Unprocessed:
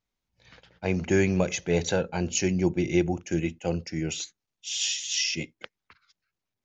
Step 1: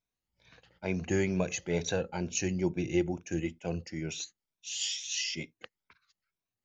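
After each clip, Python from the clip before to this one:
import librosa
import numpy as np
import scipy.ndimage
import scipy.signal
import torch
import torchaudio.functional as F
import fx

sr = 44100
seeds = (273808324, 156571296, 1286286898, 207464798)

y = fx.spec_ripple(x, sr, per_octave=1.6, drift_hz=2.2, depth_db=8)
y = y * 10.0 ** (-6.5 / 20.0)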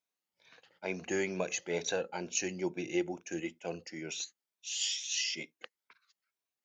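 y = scipy.signal.sosfilt(scipy.signal.bessel(2, 380.0, 'highpass', norm='mag', fs=sr, output='sos'), x)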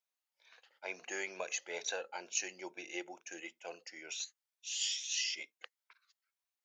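y = scipy.signal.sosfilt(scipy.signal.butter(2, 670.0, 'highpass', fs=sr, output='sos'), x)
y = y * 10.0 ** (-2.0 / 20.0)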